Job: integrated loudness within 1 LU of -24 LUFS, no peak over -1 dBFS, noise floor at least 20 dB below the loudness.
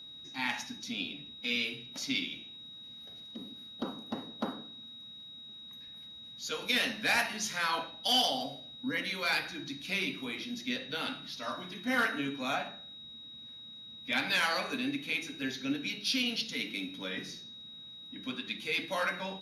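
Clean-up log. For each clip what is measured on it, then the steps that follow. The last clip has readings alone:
steady tone 3800 Hz; tone level -46 dBFS; loudness -33.0 LUFS; peak -15.5 dBFS; loudness target -24.0 LUFS
-> notch 3800 Hz, Q 30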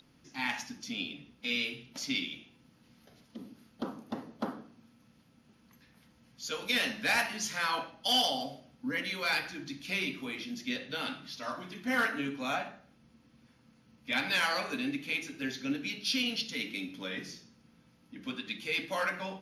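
steady tone none; loudness -33.5 LUFS; peak -16.0 dBFS; loudness target -24.0 LUFS
-> gain +9.5 dB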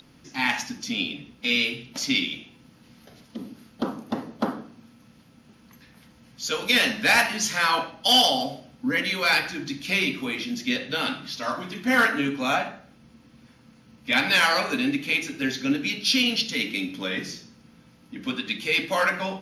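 loudness -24.0 LUFS; peak -6.5 dBFS; noise floor -55 dBFS

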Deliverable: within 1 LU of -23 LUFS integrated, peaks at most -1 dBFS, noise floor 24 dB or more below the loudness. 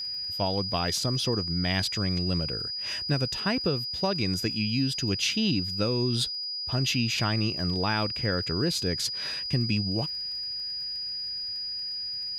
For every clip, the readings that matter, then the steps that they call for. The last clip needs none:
ticks 24/s; steady tone 4900 Hz; tone level -31 dBFS; loudness -27.5 LUFS; peak -13.0 dBFS; loudness target -23.0 LUFS
-> de-click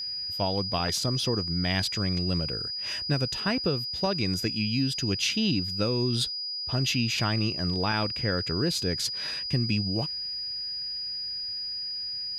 ticks 0/s; steady tone 4900 Hz; tone level -31 dBFS
-> notch 4900 Hz, Q 30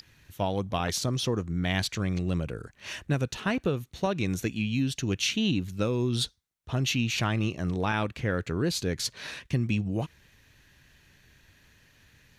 steady tone none; loudness -29.5 LUFS; peak -14.5 dBFS; loudness target -23.0 LUFS
-> gain +6.5 dB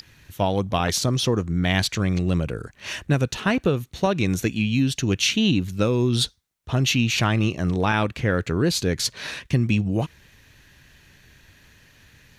loudness -23.0 LUFS; peak -8.0 dBFS; noise floor -57 dBFS

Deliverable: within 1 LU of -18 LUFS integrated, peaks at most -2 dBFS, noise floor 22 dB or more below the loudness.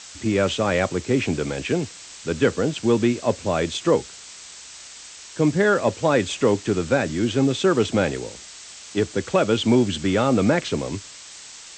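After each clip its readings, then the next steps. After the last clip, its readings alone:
noise floor -42 dBFS; noise floor target -44 dBFS; loudness -22.0 LUFS; peak -5.0 dBFS; loudness target -18.0 LUFS
-> denoiser 6 dB, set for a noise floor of -42 dBFS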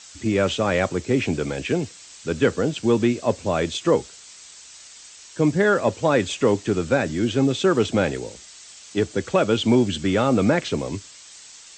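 noise floor -45 dBFS; loudness -22.0 LUFS; peak -5.0 dBFS; loudness target -18.0 LUFS
-> gain +4 dB; limiter -2 dBFS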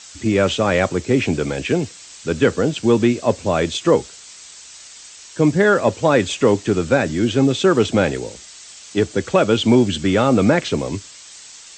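loudness -18.0 LUFS; peak -2.0 dBFS; noise floor -41 dBFS

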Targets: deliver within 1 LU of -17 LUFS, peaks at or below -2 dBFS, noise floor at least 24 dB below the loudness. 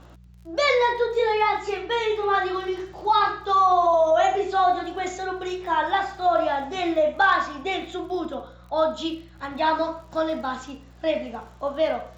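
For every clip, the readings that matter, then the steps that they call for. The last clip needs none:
ticks 43/s; hum 60 Hz; harmonics up to 180 Hz; hum level -47 dBFS; loudness -23.5 LUFS; peak -9.5 dBFS; loudness target -17.0 LUFS
-> de-click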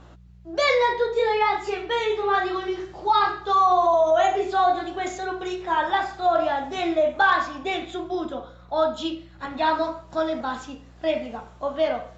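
ticks 0/s; hum 60 Hz; harmonics up to 180 Hz; hum level -47 dBFS
-> de-hum 60 Hz, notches 3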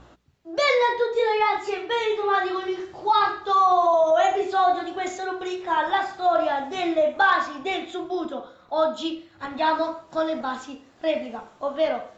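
hum none; loudness -23.5 LUFS; peak -7.5 dBFS; loudness target -17.0 LUFS
-> gain +6.5 dB; limiter -2 dBFS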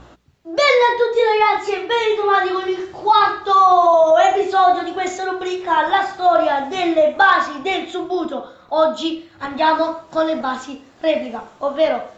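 loudness -17.0 LUFS; peak -2.0 dBFS; noise floor -47 dBFS

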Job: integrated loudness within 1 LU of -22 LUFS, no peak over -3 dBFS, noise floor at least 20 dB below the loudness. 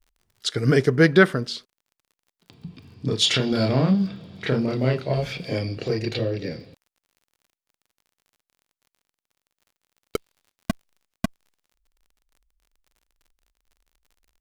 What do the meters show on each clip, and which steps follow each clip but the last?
ticks 43/s; loudness -23.0 LUFS; peak -2.5 dBFS; loudness target -22.0 LUFS
-> de-click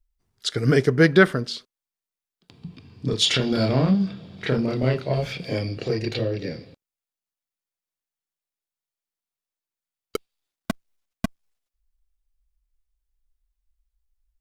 ticks 0.069/s; loudness -23.0 LUFS; peak -2.5 dBFS; loudness target -22.0 LUFS
-> gain +1 dB; limiter -3 dBFS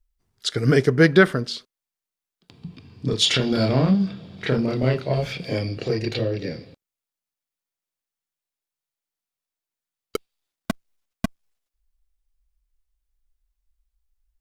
loudness -22.0 LUFS; peak -3.0 dBFS; noise floor -89 dBFS

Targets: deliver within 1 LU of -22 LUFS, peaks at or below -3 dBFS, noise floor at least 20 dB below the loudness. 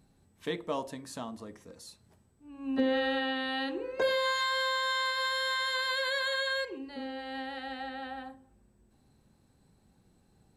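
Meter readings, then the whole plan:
loudness -31.5 LUFS; peak -18.5 dBFS; loudness target -22.0 LUFS
-> gain +9.5 dB

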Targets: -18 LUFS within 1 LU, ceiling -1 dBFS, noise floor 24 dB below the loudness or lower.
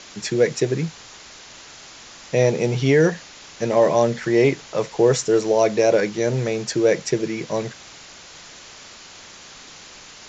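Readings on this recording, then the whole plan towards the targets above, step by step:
noise floor -43 dBFS; noise floor target -44 dBFS; loudness -20.0 LUFS; peak -4.5 dBFS; loudness target -18.0 LUFS
-> denoiser 6 dB, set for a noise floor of -43 dBFS; gain +2 dB

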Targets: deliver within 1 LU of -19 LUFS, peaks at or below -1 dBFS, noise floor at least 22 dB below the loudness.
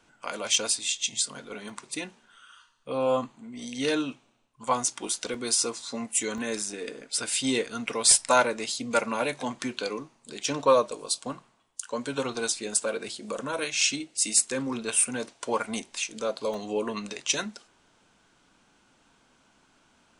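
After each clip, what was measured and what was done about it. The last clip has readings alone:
dropouts 7; longest dropout 2.1 ms; loudness -27.5 LUFS; peak -7.5 dBFS; loudness target -19.0 LUFS
-> interpolate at 0.54/1.69/5.34/6.38/10.44/13.81/16.54, 2.1 ms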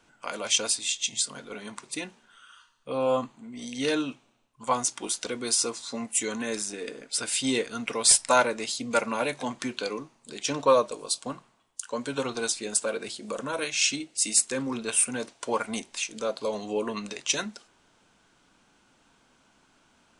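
dropouts 0; loudness -27.5 LUFS; peak -7.5 dBFS; loudness target -19.0 LUFS
-> gain +8.5 dB; limiter -1 dBFS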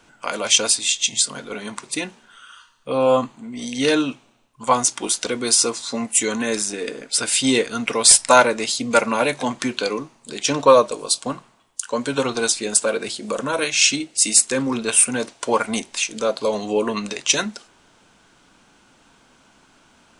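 loudness -19.0 LUFS; peak -1.0 dBFS; noise floor -56 dBFS

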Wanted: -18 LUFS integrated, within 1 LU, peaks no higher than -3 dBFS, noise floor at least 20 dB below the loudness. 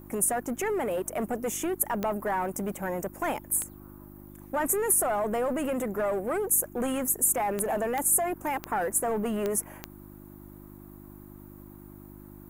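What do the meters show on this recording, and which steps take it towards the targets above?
clicks 7; hum 50 Hz; harmonics up to 350 Hz; hum level -45 dBFS; loudness -27.5 LUFS; peak -10.5 dBFS; loudness target -18.0 LUFS
-> de-click; de-hum 50 Hz, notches 7; gain +9.5 dB; limiter -3 dBFS

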